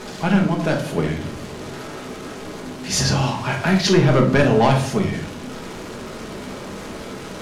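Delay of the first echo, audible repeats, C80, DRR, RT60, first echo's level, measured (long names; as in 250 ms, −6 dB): no echo audible, no echo audible, 13.5 dB, 1.0 dB, 0.60 s, no echo audible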